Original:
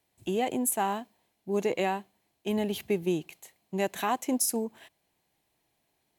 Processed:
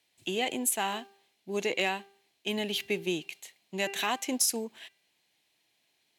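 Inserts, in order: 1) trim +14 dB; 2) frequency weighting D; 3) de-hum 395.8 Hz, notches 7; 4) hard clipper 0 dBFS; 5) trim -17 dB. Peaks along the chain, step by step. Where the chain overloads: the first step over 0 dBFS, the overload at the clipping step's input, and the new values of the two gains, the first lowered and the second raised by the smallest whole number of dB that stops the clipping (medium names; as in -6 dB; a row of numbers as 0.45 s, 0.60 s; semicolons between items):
+0.5 dBFS, +4.0 dBFS, +4.0 dBFS, 0.0 dBFS, -17.0 dBFS; step 1, 4.0 dB; step 1 +10 dB, step 5 -13 dB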